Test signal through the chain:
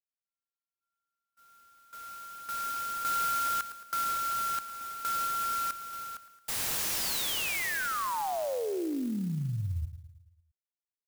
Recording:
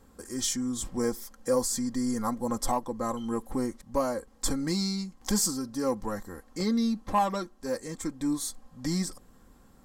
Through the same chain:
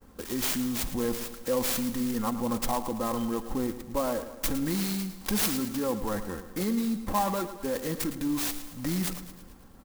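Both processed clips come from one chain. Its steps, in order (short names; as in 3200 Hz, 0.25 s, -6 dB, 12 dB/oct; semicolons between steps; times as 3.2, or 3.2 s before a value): expander -54 dBFS; dynamic EQ 7900 Hz, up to +4 dB, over -49 dBFS, Q 1.3; in parallel at -1 dB: negative-ratio compressor -35 dBFS, ratio -1; on the sum: feedback echo 0.11 s, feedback 54%, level -12 dB; clock jitter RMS 0.05 ms; gain -3 dB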